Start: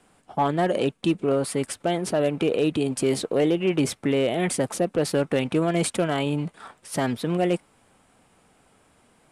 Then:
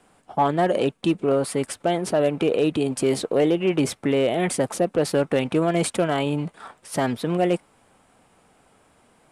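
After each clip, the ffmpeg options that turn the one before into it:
-af "equalizer=f=750:w=0.63:g=3"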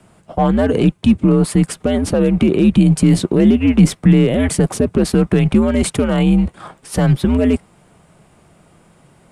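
-af "alimiter=limit=0.2:level=0:latency=1,afreqshift=-100,equalizer=f=170:t=o:w=1.1:g=11,volume=1.88"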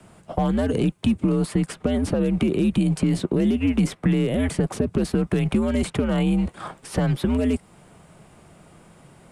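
-filter_complex "[0:a]acrossover=split=260|3300|7300[s0][s1][s2][s3];[s0]acompressor=threshold=0.0708:ratio=4[s4];[s1]acompressor=threshold=0.0562:ratio=4[s5];[s2]acompressor=threshold=0.00562:ratio=4[s6];[s3]acompressor=threshold=0.00562:ratio=4[s7];[s4][s5][s6][s7]amix=inputs=4:normalize=0"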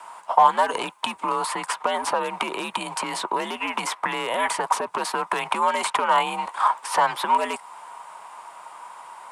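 -af "highpass=f=960:t=q:w=9.1,volume=1.88"

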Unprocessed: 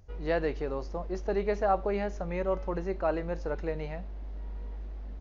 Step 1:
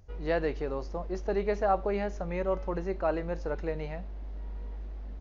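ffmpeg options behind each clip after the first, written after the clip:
-af anull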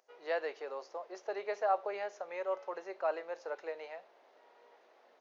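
-af "highpass=f=490:w=0.5412,highpass=f=490:w=1.3066,volume=0.668"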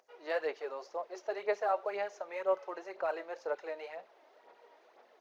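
-af "aphaser=in_gain=1:out_gain=1:delay=3.3:decay=0.49:speed=2:type=sinusoidal"

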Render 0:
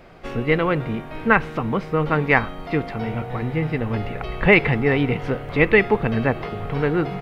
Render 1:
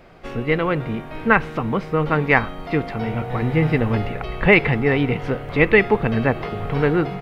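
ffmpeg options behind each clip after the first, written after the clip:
-af "dynaudnorm=f=530:g=3:m=3.76,volume=0.891"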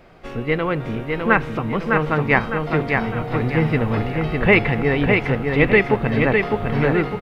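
-af "aecho=1:1:606|1212|1818|2424|3030:0.631|0.271|0.117|0.0502|0.0216,volume=0.891"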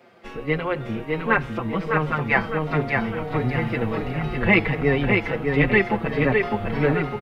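-filter_complex "[0:a]acrossover=split=140|990[s0][s1][s2];[s0]aeval=exprs='sgn(val(0))*max(abs(val(0))-0.00376,0)':c=same[s3];[s3][s1][s2]amix=inputs=3:normalize=0,asplit=2[s4][s5];[s5]adelay=5.2,afreqshift=-1.4[s6];[s4][s6]amix=inputs=2:normalize=1"

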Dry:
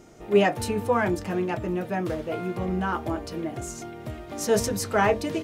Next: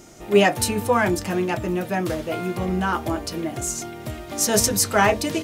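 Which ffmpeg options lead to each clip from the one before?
-af "highshelf=f=3500:g=10,bandreject=f=450:w=12,volume=1.5"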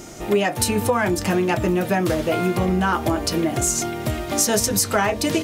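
-af "acompressor=threshold=0.0631:ratio=10,volume=2.51"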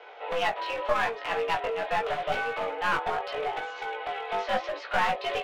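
-af "highpass=f=430:t=q:w=0.5412,highpass=f=430:t=q:w=1.307,lowpass=f=3300:t=q:w=0.5176,lowpass=f=3300:t=q:w=0.7071,lowpass=f=3300:t=q:w=1.932,afreqshift=100,aeval=exprs='clip(val(0),-1,0.0596)':c=same,flanger=delay=16.5:depth=3.9:speed=0.81"

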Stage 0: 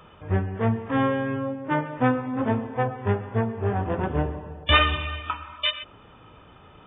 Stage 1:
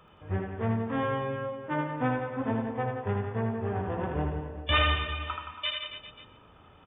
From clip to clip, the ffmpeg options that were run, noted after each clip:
-af "aecho=1:1:80|172|277.8|399.5|539.4:0.631|0.398|0.251|0.158|0.1,volume=0.422"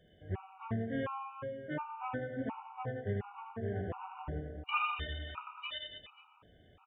-af "afftfilt=real='re*gt(sin(2*PI*1.4*pts/sr)*(1-2*mod(floor(b*sr/1024/740),2)),0)':imag='im*gt(sin(2*PI*1.4*pts/sr)*(1-2*mod(floor(b*sr/1024/740),2)),0)':win_size=1024:overlap=0.75,volume=0.562"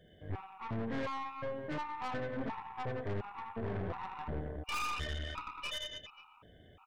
-af "aeval=exprs='(tanh(112*val(0)+0.65)-tanh(0.65))/112':c=same,volume=2.11"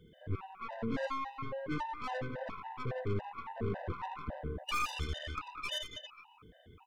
-af "afftfilt=real='re*gt(sin(2*PI*3.6*pts/sr)*(1-2*mod(floor(b*sr/1024/510),2)),0)':imag='im*gt(sin(2*PI*3.6*pts/sr)*(1-2*mod(floor(b*sr/1024/510),2)),0)':win_size=1024:overlap=0.75,volume=1.58"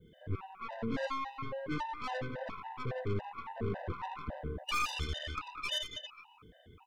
-af "adynamicequalizer=threshold=0.00282:dfrequency=4300:dqfactor=0.82:tfrequency=4300:tqfactor=0.82:attack=5:release=100:ratio=0.375:range=2:mode=boostabove:tftype=bell"

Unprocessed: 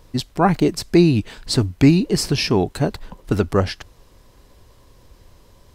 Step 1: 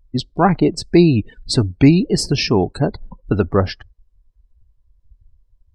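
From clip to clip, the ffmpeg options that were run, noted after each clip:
-af "afftdn=nr=35:nf=-32,volume=1.26"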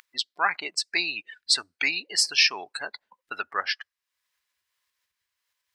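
-af "acompressor=mode=upward:threshold=0.0316:ratio=2.5,highpass=f=1800:t=q:w=1.7"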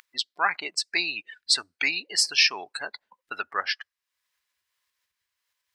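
-af anull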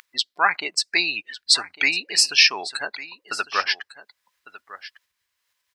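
-af "aecho=1:1:1152:0.15,volume=1.78"

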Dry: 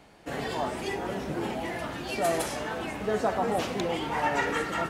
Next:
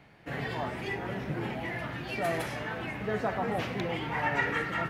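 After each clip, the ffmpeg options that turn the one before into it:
-af "equalizer=f=125:t=o:w=1:g=11,equalizer=f=2000:t=o:w=1:g=8,equalizer=f=8000:t=o:w=1:g=-9,volume=0.531"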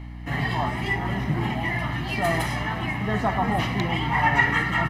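-af "aecho=1:1:1:0.68,aeval=exprs='val(0)+0.00794*(sin(2*PI*60*n/s)+sin(2*PI*2*60*n/s)/2+sin(2*PI*3*60*n/s)/3+sin(2*PI*4*60*n/s)/4+sin(2*PI*5*60*n/s)/5)':c=same,volume=2.11"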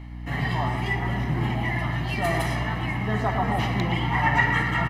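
-filter_complex "[0:a]asplit=2[s0][s1];[s1]adelay=117,lowpass=f=2000:p=1,volume=0.473,asplit=2[s2][s3];[s3]adelay=117,lowpass=f=2000:p=1,volume=0.53,asplit=2[s4][s5];[s5]adelay=117,lowpass=f=2000:p=1,volume=0.53,asplit=2[s6][s7];[s7]adelay=117,lowpass=f=2000:p=1,volume=0.53,asplit=2[s8][s9];[s9]adelay=117,lowpass=f=2000:p=1,volume=0.53,asplit=2[s10][s11];[s11]adelay=117,lowpass=f=2000:p=1,volume=0.53,asplit=2[s12][s13];[s13]adelay=117,lowpass=f=2000:p=1,volume=0.53[s14];[s0][s2][s4][s6][s8][s10][s12][s14]amix=inputs=8:normalize=0,volume=0.794"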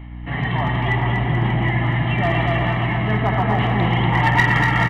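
-af "aresample=8000,aresample=44100,aeval=exprs='clip(val(0),-1,0.15)':c=same,aecho=1:1:240|432|585.6|708.5|806.8:0.631|0.398|0.251|0.158|0.1,volume=1.5"

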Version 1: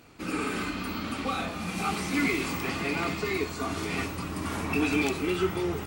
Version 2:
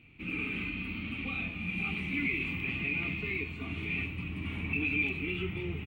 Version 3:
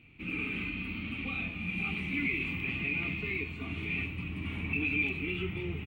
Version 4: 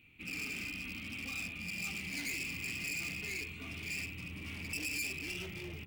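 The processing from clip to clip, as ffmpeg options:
-filter_complex "[0:a]firequalizer=gain_entry='entry(120,0);entry(540,-17);entry(1600,-16);entry(2400,6);entry(5000,-30);entry(14000,-24)':delay=0.05:min_phase=1,asplit=2[s0][s1];[s1]alimiter=level_in=1.12:limit=0.0631:level=0:latency=1,volume=0.891,volume=1.19[s2];[s0][s2]amix=inputs=2:normalize=0,volume=0.447"
-af anull
-af "volume=47.3,asoftclip=hard,volume=0.0211,crystalizer=i=3.5:c=0,bandreject=f=45.73:t=h:w=4,bandreject=f=91.46:t=h:w=4,bandreject=f=137.19:t=h:w=4,bandreject=f=182.92:t=h:w=4,bandreject=f=228.65:t=h:w=4,bandreject=f=274.38:t=h:w=4,bandreject=f=320.11:t=h:w=4,bandreject=f=365.84:t=h:w=4,bandreject=f=411.57:t=h:w=4,bandreject=f=457.3:t=h:w=4,bandreject=f=503.03:t=h:w=4,bandreject=f=548.76:t=h:w=4,bandreject=f=594.49:t=h:w=4,bandreject=f=640.22:t=h:w=4,bandreject=f=685.95:t=h:w=4,bandreject=f=731.68:t=h:w=4,bandreject=f=777.41:t=h:w=4,bandreject=f=823.14:t=h:w=4,bandreject=f=868.87:t=h:w=4,bandreject=f=914.6:t=h:w=4,bandreject=f=960.33:t=h:w=4,bandreject=f=1006.06:t=h:w=4,bandreject=f=1051.79:t=h:w=4,bandreject=f=1097.52:t=h:w=4,bandreject=f=1143.25:t=h:w=4,bandreject=f=1188.98:t=h:w=4,bandreject=f=1234.71:t=h:w=4,bandreject=f=1280.44:t=h:w=4,bandreject=f=1326.17:t=h:w=4,bandreject=f=1371.9:t=h:w=4,volume=0.447"

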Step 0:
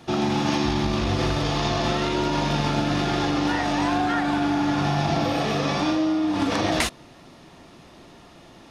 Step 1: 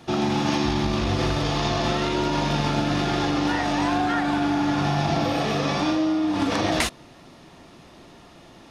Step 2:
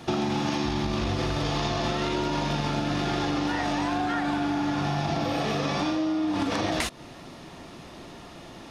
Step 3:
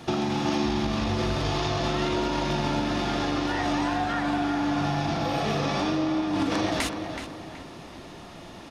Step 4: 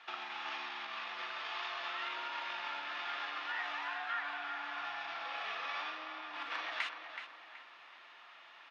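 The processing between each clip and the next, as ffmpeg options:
-af anull
-af "acompressor=threshold=0.0398:ratio=6,volume=1.58"
-filter_complex "[0:a]asplit=2[s0][s1];[s1]adelay=375,lowpass=f=3300:p=1,volume=0.447,asplit=2[s2][s3];[s3]adelay=375,lowpass=f=3300:p=1,volume=0.39,asplit=2[s4][s5];[s5]adelay=375,lowpass=f=3300:p=1,volume=0.39,asplit=2[s6][s7];[s7]adelay=375,lowpass=f=3300:p=1,volume=0.39,asplit=2[s8][s9];[s9]adelay=375,lowpass=f=3300:p=1,volume=0.39[s10];[s0][s2][s4][s6][s8][s10]amix=inputs=6:normalize=0"
-af "asuperpass=centerf=1900:order=4:qfactor=0.93,volume=0.562"

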